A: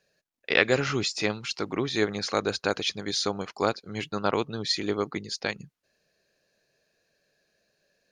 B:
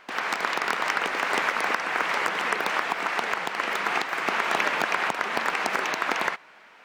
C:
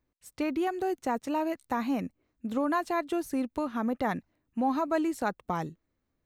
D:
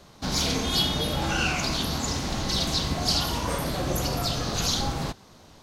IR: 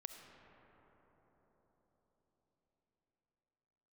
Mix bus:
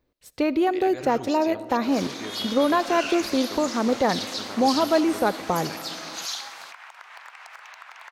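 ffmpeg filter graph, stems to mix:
-filter_complex "[0:a]alimiter=limit=-14.5dB:level=0:latency=1,adelay=250,volume=-10.5dB[link_01];[1:a]highpass=frequency=760:width=0.5412,highpass=frequency=760:width=1.3066,acompressor=threshold=-28dB:ratio=6,adelay=1800,volume=-12dB[link_02];[2:a]equalizer=frequency=500:width_type=o:width=1:gain=7,equalizer=frequency=4000:width_type=o:width=1:gain=6,equalizer=frequency=8000:width_type=o:width=1:gain=-5,volume=2dB,asplit=2[link_03][link_04];[link_04]volume=-4dB[link_05];[3:a]highpass=1100,dynaudnorm=framelen=110:gausssize=13:maxgain=8.5dB,adelay=1600,volume=-12.5dB[link_06];[4:a]atrim=start_sample=2205[link_07];[link_05][link_07]afir=irnorm=-1:irlink=0[link_08];[link_01][link_02][link_03][link_06][link_08]amix=inputs=5:normalize=0"

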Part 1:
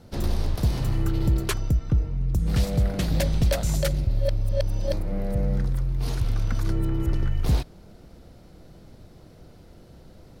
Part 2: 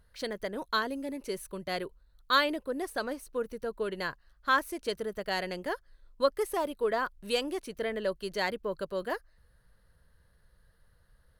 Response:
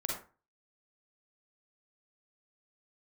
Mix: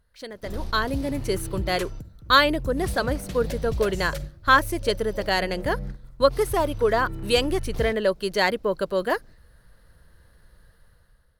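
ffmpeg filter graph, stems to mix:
-filter_complex "[0:a]adelay=300,volume=-9.5dB,asplit=2[link_01][link_02];[link_02]volume=-17dB[link_03];[1:a]dynaudnorm=framelen=320:gausssize=5:maxgain=13dB,volume=-3dB,asplit=2[link_04][link_05];[link_05]apad=whole_len=471902[link_06];[link_01][link_06]sidechaingate=range=-33dB:threshold=-43dB:ratio=16:detection=peak[link_07];[2:a]atrim=start_sample=2205[link_08];[link_03][link_08]afir=irnorm=-1:irlink=0[link_09];[link_07][link_04][link_09]amix=inputs=3:normalize=0"

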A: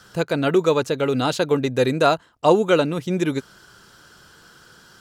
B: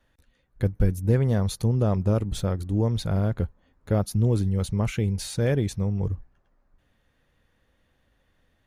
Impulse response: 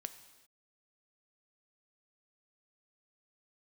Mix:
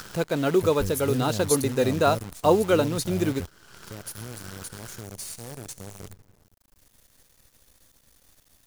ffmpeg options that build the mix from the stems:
-filter_complex "[0:a]volume=-4dB,asplit=3[link_01][link_02][link_03];[link_02]volume=-19.5dB[link_04];[1:a]aexciter=amount=8.9:drive=5.7:freq=4100,volume=-11dB,asplit=2[link_05][link_06];[link_06]volume=-11dB[link_07];[link_03]apad=whole_len=382158[link_08];[link_05][link_08]sidechaingate=range=-38dB:threshold=-43dB:ratio=16:detection=peak[link_09];[2:a]atrim=start_sample=2205[link_10];[link_04][link_07]amix=inputs=2:normalize=0[link_11];[link_11][link_10]afir=irnorm=-1:irlink=0[link_12];[link_01][link_09][link_12]amix=inputs=3:normalize=0,equalizer=frequency=2700:width=0.71:gain=-3.5,acompressor=mode=upward:threshold=-31dB:ratio=2.5,acrusher=bits=7:dc=4:mix=0:aa=0.000001"

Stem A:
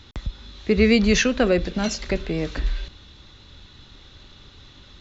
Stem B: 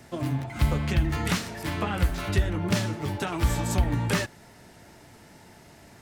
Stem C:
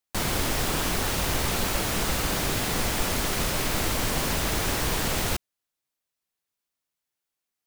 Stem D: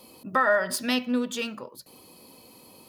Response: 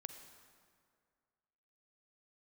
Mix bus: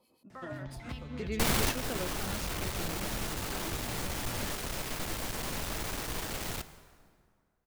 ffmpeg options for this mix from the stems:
-filter_complex "[0:a]adelay=500,volume=-19.5dB[link_01];[1:a]highshelf=frequency=9300:gain=-10.5,acompressor=threshold=-31dB:ratio=6,adelay=300,volume=-8.5dB[link_02];[2:a]aeval=exprs='(tanh(22.4*val(0)+0.6)-tanh(0.6))/22.4':channel_layout=same,adelay=1250,volume=2dB,asplit=2[link_03][link_04];[link_04]volume=-8.5dB[link_05];[3:a]highshelf=frequency=5900:gain=-6,alimiter=limit=-19.5dB:level=0:latency=1,acrossover=split=1500[link_06][link_07];[link_06]aeval=exprs='val(0)*(1-0.7/2+0.7/2*cos(2*PI*7.8*n/s))':channel_layout=same[link_08];[link_07]aeval=exprs='val(0)*(1-0.7/2-0.7/2*cos(2*PI*7.8*n/s))':channel_layout=same[link_09];[link_08][link_09]amix=inputs=2:normalize=0,volume=-14.5dB,asplit=2[link_10][link_11];[link_11]apad=whole_len=393191[link_12];[link_03][link_12]sidechaingate=range=-13dB:threshold=-58dB:ratio=16:detection=peak[link_13];[4:a]atrim=start_sample=2205[link_14];[link_05][link_14]afir=irnorm=-1:irlink=0[link_15];[link_01][link_02][link_13][link_10][link_15]amix=inputs=5:normalize=0"

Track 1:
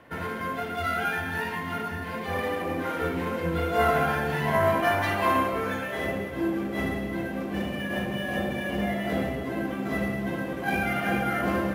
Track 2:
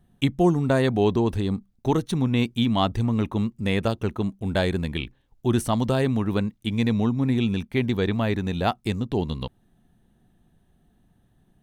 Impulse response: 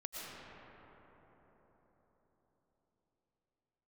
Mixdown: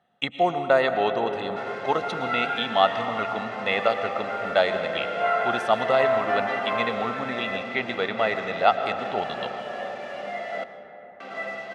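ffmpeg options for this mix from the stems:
-filter_complex "[0:a]acrusher=bits=5:mix=0:aa=0.5,adelay=1450,volume=-3.5dB,asplit=3[link_01][link_02][link_03];[link_01]atrim=end=10.64,asetpts=PTS-STARTPTS,afade=type=out:start_time=10.636:duration=0.004:curve=hsin[link_04];[link_02]atrim=start=10.64:end=11.2,asetpts=PTS-STARTPTS,volume=0[link_05];[link_03]atrim=start=11.2,asetpts=PTS-STARTPTS,afade=type=in:duration=0.004:curve=hsin[link_06];[link_04][link_05][link_06]concat=n=3:v=0:a=1,asplit=2[link_07][link_08];[link_08]volume=-7.5dB[link_09];[1:a]volume=2dB,asplit=2[link_10][link_11];[link_11]volume=-3.5dB[link_12];[2:a]atrim=start_sample=2205[link_13];[link_09][link_12]amix=inputs=2:normalize=0[link_14];[link_14][link_13]afir=irnorm=-1:irlink=0[link_15];[link_07][link_10][link_15]amix=inputs=3:normalize=0,highpass=560,lowpass=3000,aecho=1:1:1.5:0.53"

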